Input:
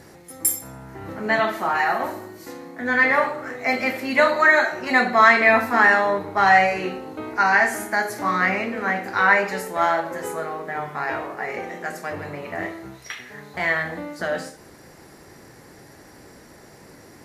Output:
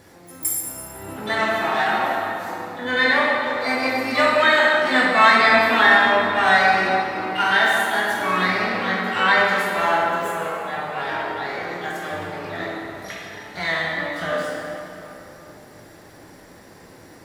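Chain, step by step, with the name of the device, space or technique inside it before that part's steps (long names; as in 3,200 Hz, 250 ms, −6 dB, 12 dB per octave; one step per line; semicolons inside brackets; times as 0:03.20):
shimmer-style reverb (pitch-shifted copies added +12 semitones −9 dB; convolution reverb RT60 3.3 s, pre-delay 10 ms, DRR −3 dB)
level −4 dB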